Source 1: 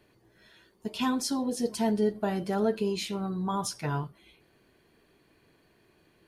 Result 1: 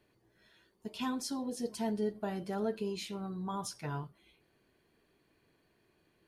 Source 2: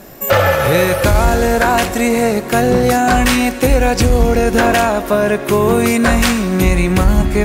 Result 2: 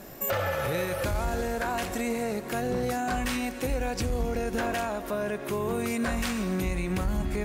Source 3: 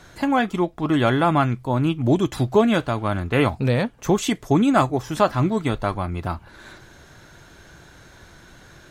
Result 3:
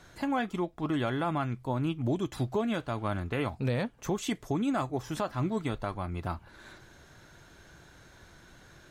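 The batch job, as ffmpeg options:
-af "alimiter=limit=0.224:level=0:latency=1:release=292,volume=0.422"

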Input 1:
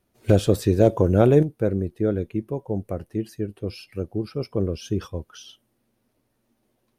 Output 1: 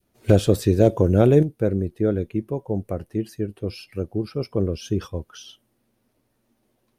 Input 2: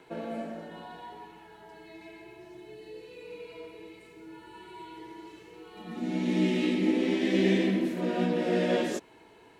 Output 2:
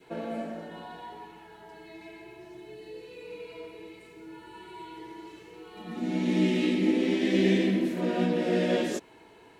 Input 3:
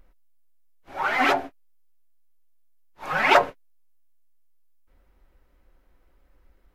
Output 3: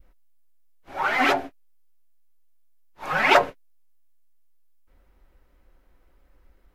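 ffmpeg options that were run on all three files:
-af "adynamicequalizer=threshold=0.0158:dfrequency=1000:dqfactor=0.91:tfrequency=1000:tqfactor=0.91:attack=5:release=100:ratio=0.375:range=2.5:mode=cutabove:tftype=bell,volume=1.19"

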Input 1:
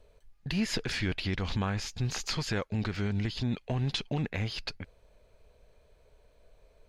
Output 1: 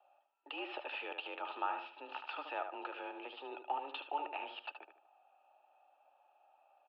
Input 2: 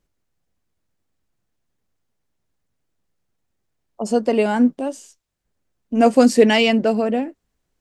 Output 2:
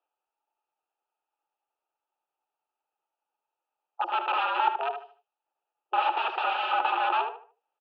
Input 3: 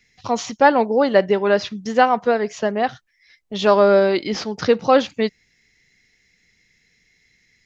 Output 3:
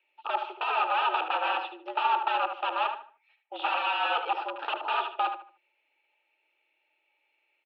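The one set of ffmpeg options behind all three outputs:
-filter_complex "[0:a]aeval=exprs='(mod(6.68*val(0)+1,2)-1)/6.68':c=same,asplit=3[s0][s1][s2];[s0]bandpass=f=730:t=q:w=8,volume=1[s3];[s1]bandpass=f=1090:t=q:w=8,volume=0.501[s4];[s2]bandpass=f=2440:t=q:w=8,volume=0.355[s5];[s3][s4][s5]amix=inputs=3:normalize=0,asplit=2[s6][s7];[s7]adelay=75,lowpass=f=2800:p=1,volume=0.447,asplit=2[s8][s9];[s9]adelay=75,lowpass=f=2800:p=1,volume=0.31,asplit=2[s10][s11];[s11]adelay=75,lowpass=f=2800:p=1,volume=0.31,asplit=2[s12][s13];[s13]adelay=75,lowpass=f=2800:p=1,volume=0.31[s14];[s8][s10][s12][s14]amix=inputs=4:normalize=0[s15];[s6][s15]amix=inputs=2:normalize=0,highpass=f=160:t=q:w=0.5412,highpass=f=160:t=q:w=1.307,lowpass=f=3400:t=q:w=0.5176,lowpass=f=3400:t=q:w=0.7071,lowpass=f=3400:t=q:w=1.932,afreqshift=140,volume=2.24"

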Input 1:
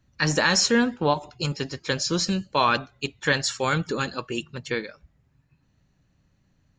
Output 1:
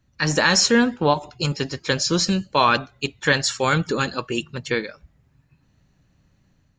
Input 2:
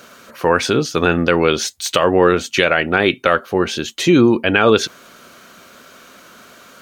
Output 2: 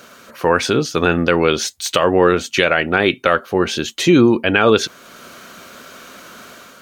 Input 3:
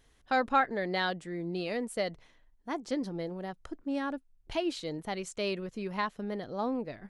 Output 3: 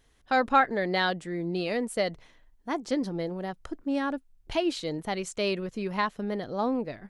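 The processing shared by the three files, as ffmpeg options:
-af "dynaudnorm=f=120:g=5:m=1.68"

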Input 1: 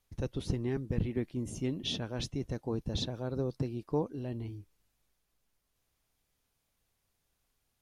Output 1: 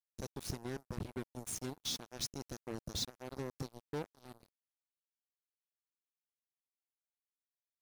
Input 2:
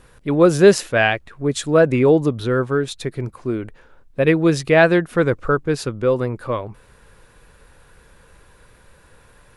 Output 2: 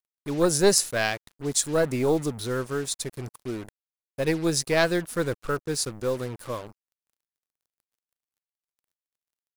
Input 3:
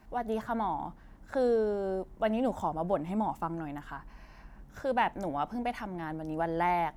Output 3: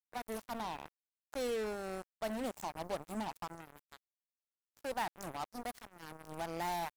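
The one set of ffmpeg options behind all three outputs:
-af "aeval=exprs='0.891*(cos(1*acos(clip(val(0)/0.891,-1,1)))-cos(1*PI/2))+0.224*(cos(2*acos(clip(val(0)/0.891,-1,1)))-cos(2*PI/2))+0.00562*(cos(3*acos(clip(val(0)/0.891,-1,1)))-cos(3*PI/2))':c=same,aexciter=amount=5.2:drive=6:freq=4200,acrusher=bits=4:mix=0:aa=0.5,volume=0.335"

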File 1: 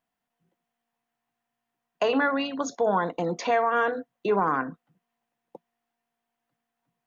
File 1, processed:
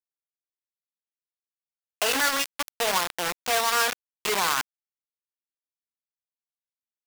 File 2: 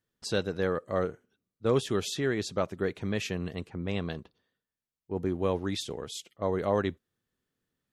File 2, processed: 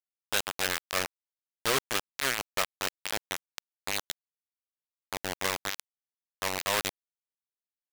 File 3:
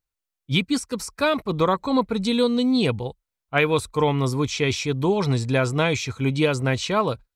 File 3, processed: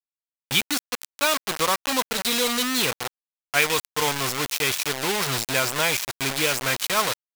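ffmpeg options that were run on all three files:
-af "acrusher=bits=3:mix=0:aa=0.000001,tiltshelf=f=650:g=-7.5,volume=0.596"

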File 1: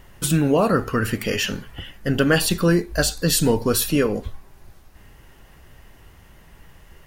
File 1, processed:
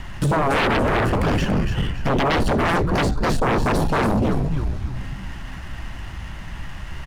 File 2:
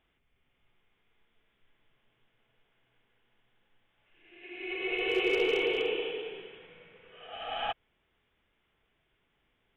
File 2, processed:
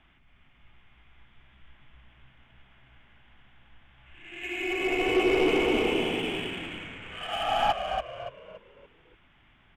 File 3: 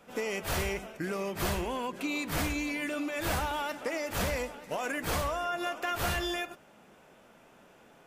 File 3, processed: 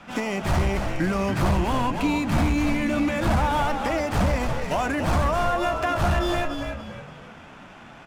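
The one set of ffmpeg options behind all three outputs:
-filter_complex "[0:a]acrossover=split=660|990[s0][s1][s2];[s2]acompressor=threshold=0.00447:ratio=6[s3];[s0][s1][s3]amix=inputs=3:normalize=0,equalizer=f=460:t=o:w=0.63:g=-14.5,asplit=6[s4][s5][s6][s7][s8][s9];[s5]adelay=285,afreqshift=-67,volume=0.473[s10];[s6]adelay=570,afreqshift=-134,volume=0.184[s11];[s7]adelay=855,afreqshift=-201,volume=0.0716[s12];[s8]adelay=1140,afreqshift=-268,volume=0.0282[s13];[s9]adelay=1425,afreqshift=-335,volume=0.011[s14];[s4][s10][s11][s12][s13][s14]amix=inputs=6:normalize=0,aeval=exprs='0.376*sin(PI/2*7.94*val(0)/0.376)':c=same,adynamicsmooth=sensitivity=6:basefreq=4000,volume=0.447"

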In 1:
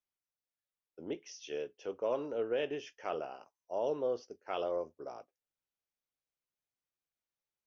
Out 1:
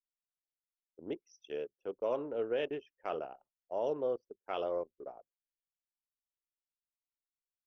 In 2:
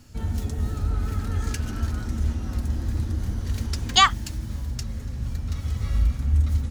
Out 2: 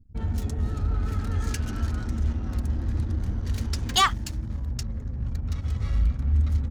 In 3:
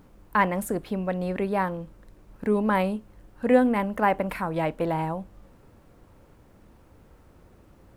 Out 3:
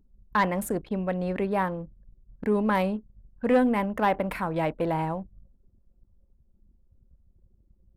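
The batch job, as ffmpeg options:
-af "asoftclip=type=tanh:threshold=0.211,anlmdn=0.158"

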